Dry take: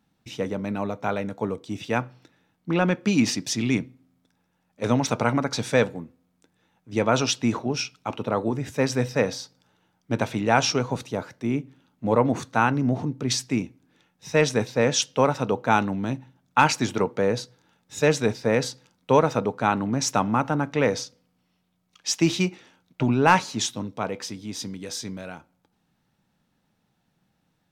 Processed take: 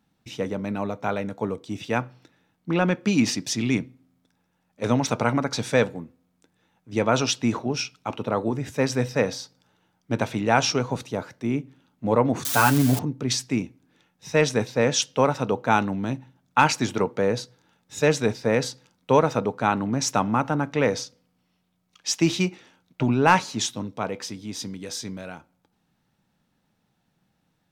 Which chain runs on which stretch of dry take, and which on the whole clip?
0:12.45–0:12.99: spike at every zero crossing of −16 dBFS + comb filter 7 ms, depth 76%
whole clip: no processing

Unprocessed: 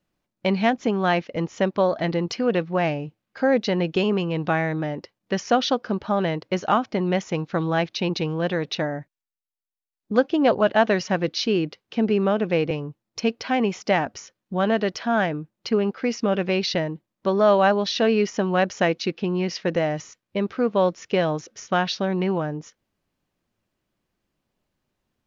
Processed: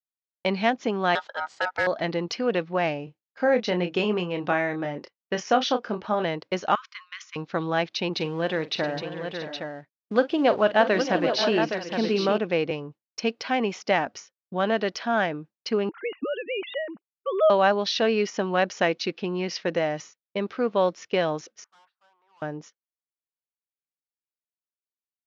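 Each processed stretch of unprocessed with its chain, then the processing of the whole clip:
0:01.15–0:01.87: low-shelf EQ 160 Hz −4 dB + ring modulation 1,100 Hz + hard clipping −15 dBFS
0:03.04–0:06.24: parametric band 4,400 Hz −4.5 dB 0.59 octaves + double-tracking delay 28 ms −8 dB
0:06.75–0:07.36: linear-phase brick-wall high-pass 1,000 Hz + downward compressor, threshold −30 dBFS
0:08.13–0:12.38: mu-law and A-law mismatch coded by mu + low-pass filter 5,800 Hz + multi-tap delay 43/623/674/816 ms −15/−12.5/−15/−7 dB
0:15.89–0:17.50: three sine waves on the formant tracks + parametric band 460 Hz −3.5 dB 1.2 octaves
0:21.64–0:22.42: flat-topped band-pass 1,100 Hz, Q 1.7 + tube saturation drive 42 dB, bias 0.25
whole clip: Chebyshev low-pass filter 5,600 Hz, order 2; downward expander −36 dBFS; high-pass filter 290 Hz 6 dB per octave

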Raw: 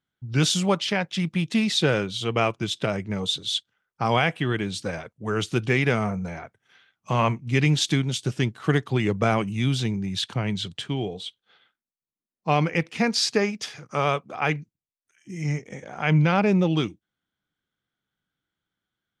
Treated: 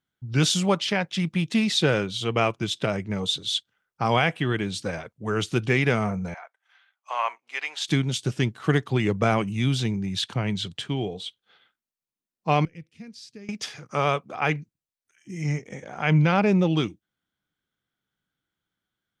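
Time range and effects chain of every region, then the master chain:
0:06.34–0:07.88: high-pass filter 730 Hz 24 dB per octave + high-shelf EQ 2,900 Hz −8.5 dB + notch filter 5,700 Hz, Q 29
0:12.65–0:13.49: guitar amp tone stack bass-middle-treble 10-0-1 + notch filter 6,700 Hz, Q 27
whole clip: no processing

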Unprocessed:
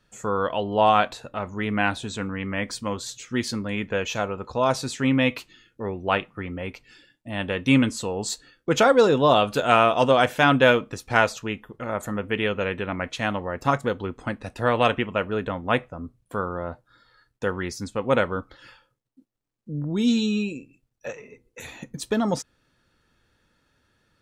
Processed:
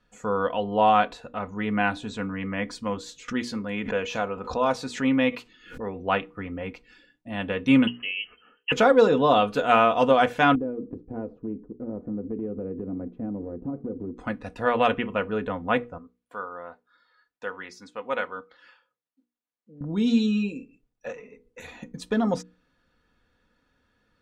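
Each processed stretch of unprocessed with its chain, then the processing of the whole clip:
0:03.28–0:05.96: low-shelf EQ 180 Hz −5.5 dB + background raised ahead of every attack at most 100 dB per second
0:07.87–0:08.72: voice inversion scrambler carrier 3,100 Hz + low-shelf EQ 220 Hz −7.5 dB
0:10.55–0:14.17: low-pass with resonance 340 Hz, resonance Q 2.7 + downward compressor 4 to 1, threshold −27 dBFS
0:15.98–0:19.81: high-pass filter 1,200 Hz 6 dB per octave + high-shelf EQ 5,200 Hz −7.5 dB
whole clip: low-pass filter 2,800 Hz 6 dB per octave; mains-hum notches 60/120/180/240/300/360/420/480 Hz; comb filter 4.1 ms, depth 42%; level −1.5 dB

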